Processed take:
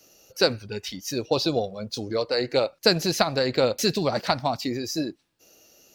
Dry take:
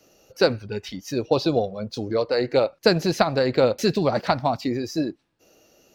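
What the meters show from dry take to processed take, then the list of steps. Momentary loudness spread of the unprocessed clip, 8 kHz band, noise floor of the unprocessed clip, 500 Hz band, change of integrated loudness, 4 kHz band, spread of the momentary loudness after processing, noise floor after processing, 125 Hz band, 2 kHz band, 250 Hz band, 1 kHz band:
9 LU, +6.0 dB, -66 dBFS, -3.0 dB, -2.0 dB, +4.0 dB, 11 LU, -68 dBFS, -3.5 dB, -1.0 dB, -3.5 dB, -2.5 dB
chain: treble shelf 3.2 kHz +11.5 dB; trim -3.5 dB

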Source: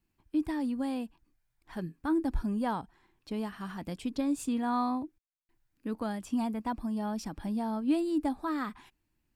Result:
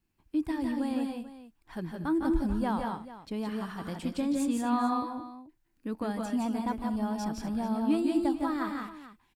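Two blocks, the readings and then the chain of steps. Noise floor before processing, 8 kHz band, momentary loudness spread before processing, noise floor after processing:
-80 dBFS, +2.0 dB, 10 LU, -71 dBFS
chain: multi-tap echo 154/172/213/239/438 ms -7.5/-4/-20/-15/-15 dB

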